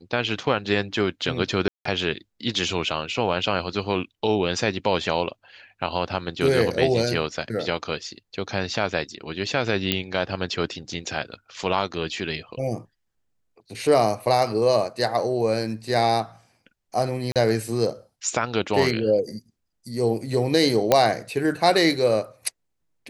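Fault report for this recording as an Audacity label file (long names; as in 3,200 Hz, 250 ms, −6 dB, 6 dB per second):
1.680000	1.850000	drop-out 174 ms
9.920000	9.920000	click −6 dBFS
17.320000	17.360000	drop-out 37 ms
20.920000	20.920000	click −3 dBFS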